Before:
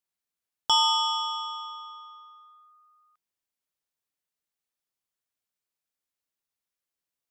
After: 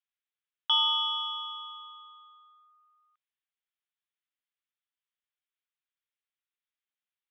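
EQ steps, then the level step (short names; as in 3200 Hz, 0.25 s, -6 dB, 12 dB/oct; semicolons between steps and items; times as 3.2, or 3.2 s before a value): HPF 1500 Hz 12 dB/oct; elliptic low-pass 3500 Hz, stop band 60 dB; 0.0 dB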